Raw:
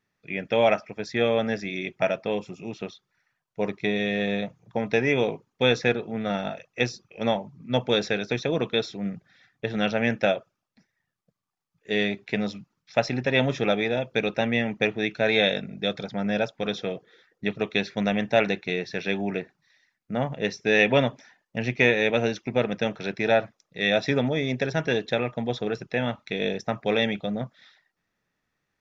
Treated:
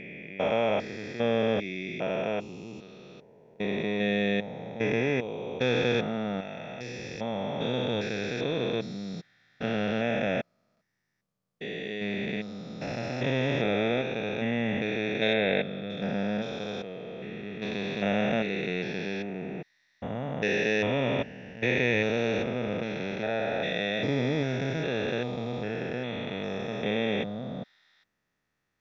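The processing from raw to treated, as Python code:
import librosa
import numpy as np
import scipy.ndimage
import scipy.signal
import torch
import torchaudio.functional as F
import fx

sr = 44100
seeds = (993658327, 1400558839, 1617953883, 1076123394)

y = fx.spec_steps(x, sr, hold_ms=400)
y = fx.lowpass(y, sr, hz=2800.0, slope=12, at=(15.33, 15.9))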